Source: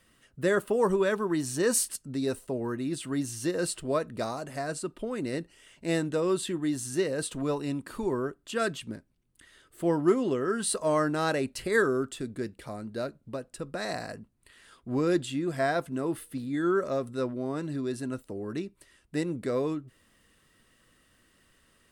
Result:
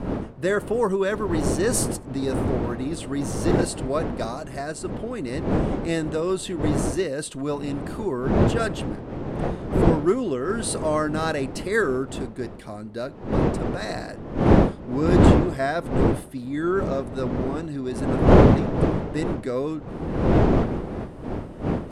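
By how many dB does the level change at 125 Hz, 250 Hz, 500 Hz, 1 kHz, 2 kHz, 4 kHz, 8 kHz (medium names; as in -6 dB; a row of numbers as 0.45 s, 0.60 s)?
+14.0 dB, +8.0 dB, +5.5 dB, +7.0 dB, +3.5 dB, +3.0 dB, +1.5 dB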